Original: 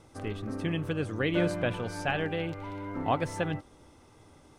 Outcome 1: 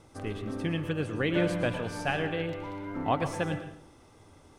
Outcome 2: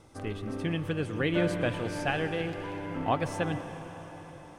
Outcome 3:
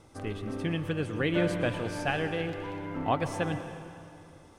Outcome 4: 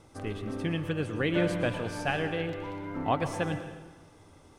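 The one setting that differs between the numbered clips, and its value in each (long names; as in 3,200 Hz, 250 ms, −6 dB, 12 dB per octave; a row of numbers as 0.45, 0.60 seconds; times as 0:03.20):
dense smooth reverb, RT60: 0.58, 5.3, 2.5, 1.2 seconds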